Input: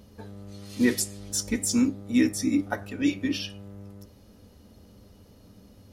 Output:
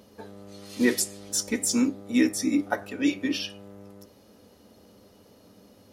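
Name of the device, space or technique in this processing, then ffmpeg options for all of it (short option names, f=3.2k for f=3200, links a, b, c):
filter by subtraction: -filter_complex "[0:a]asplit=2[a][b];[b]lowpass=480,volume=-1[c];[a][c]amix=inputs=2:normalize=0,volume=1.5dB"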